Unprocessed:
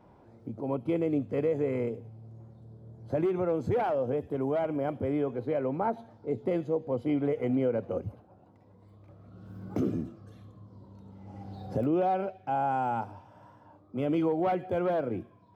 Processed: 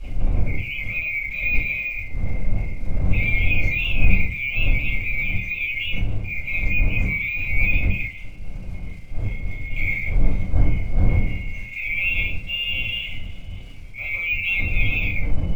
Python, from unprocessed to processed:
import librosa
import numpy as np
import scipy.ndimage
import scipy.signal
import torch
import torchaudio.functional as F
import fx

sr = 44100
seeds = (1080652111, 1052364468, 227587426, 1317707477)

y = fx.band_swap(x, sr, width_hz=2000)
y = fx.dmg_wind(y, sr, seeds[0], corner_hz=83.0, level_db=-27.0)
y = fx.low_shelf(y, sr, hz=300.0, db=-9.0)
y = fx.transient(y, sr, attack_db=-2, sustain_db=10)
y = fx.dmg_crackle(y, sr, seeds[1], per_s=250.0, level_db=-43.0)
y = fx.room_shoebox(y, sr, seeds[2], volume_m3=150.0, walls='furnished', distance_m=5.6)
y = np.interp(np.arange(len(y)), np.arange(len(y))[::2], y[::2])
y = F.gain(torch.from_numpy(y), -8.0).numpy()